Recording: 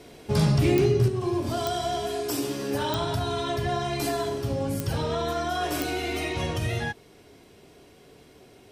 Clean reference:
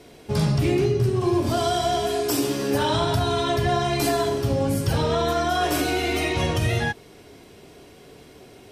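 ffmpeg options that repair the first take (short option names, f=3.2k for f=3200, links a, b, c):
-af "adeclick=t=4,asetnsamples=n=441:p=0,asendcmd='1.08 volume volume 5.5dB',volume=0dB"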